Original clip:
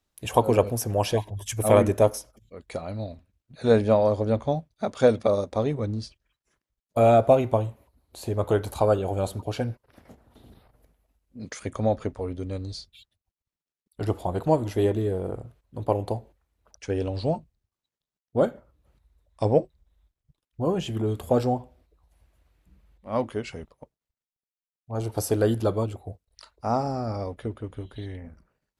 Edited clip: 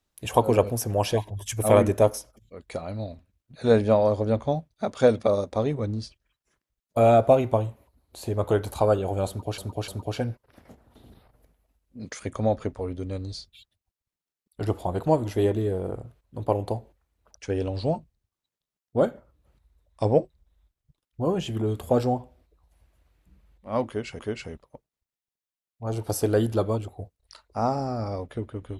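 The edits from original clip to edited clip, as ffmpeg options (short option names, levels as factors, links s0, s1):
-filter_complex "[0:a]asplit=4[s0][s1][s2][s3];[s0]atrim=end=9.582[s4];[s1]atrim=start=9.278:end=9.582[s5];[s2]atrim=start=9.278:end=23.592[s6];[s3]atrim=start=23.268[s7];[s4][s5]acrossfade=d=0.004:c1=hsin:c2=hsin[s8];[s8][s6]acrossfade=d=0.004:c1=hsin:c2=hsin[s9];[s9][s7]acrossfade=d=0.004:c1=hsin:c2=hsin"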